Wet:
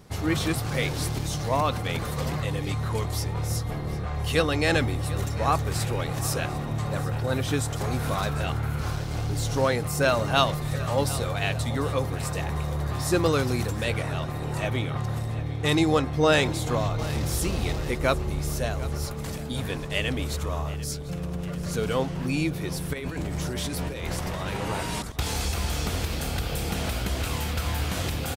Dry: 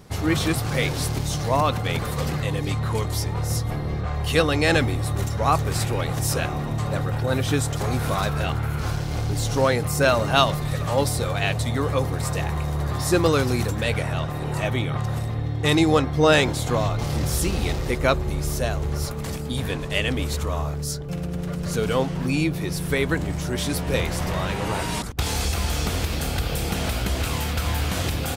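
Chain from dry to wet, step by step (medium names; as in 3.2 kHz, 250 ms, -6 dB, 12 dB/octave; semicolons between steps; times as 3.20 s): 22.93–24.57 s: compressor with a negative ratio -27 dBFS, ratio -1; on a send: feedback delay 746 ms, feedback 50%, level -17 dB; on the sum: trim -3.5 dB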